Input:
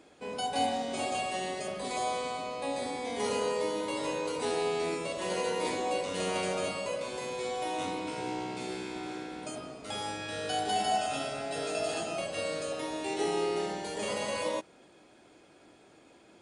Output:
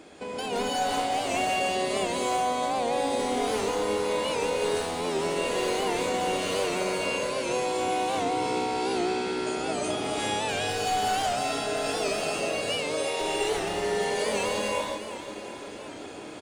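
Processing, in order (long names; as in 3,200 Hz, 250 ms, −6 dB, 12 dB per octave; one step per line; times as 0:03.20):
wavefolder on the positive side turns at −28 dBFS
0:12.69–0:13.20: high-pass filter 430 Hz 24 dB per octave
downward compressor 5 to 1, threshold −43 dBFS, peak gain reduction 15 dB
repeating echo 365 ms, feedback 58%, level −11.5 dB
reverb whose tail is shaped and stops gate 400 ms rising, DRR −8 dB
wow of a warped record 78 rpm, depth 100 cents
level +8 dB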